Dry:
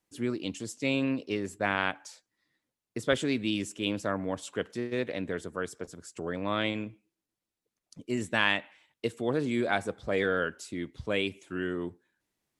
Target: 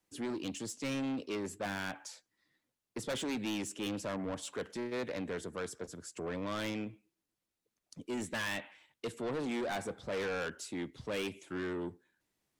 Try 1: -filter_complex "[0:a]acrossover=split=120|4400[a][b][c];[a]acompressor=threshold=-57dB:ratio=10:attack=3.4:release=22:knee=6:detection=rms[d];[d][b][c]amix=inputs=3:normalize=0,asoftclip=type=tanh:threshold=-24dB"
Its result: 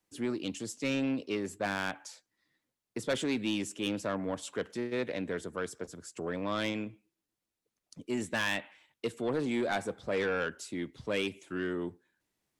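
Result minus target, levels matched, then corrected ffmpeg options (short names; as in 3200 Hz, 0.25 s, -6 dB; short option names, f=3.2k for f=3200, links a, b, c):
soft clip: distortion -6 dB
-filter_complex "[0:a]acrossover=split=120|4400[a][b][c];[a]acompressor=threshold=-57dB:ratio=10:attack=3.4:release=22:knee=6:detection=rms[d];[d][b][c]amix=inputs=3:normalize=0,asoftclip=type=tanh:threshold=-32.5dB"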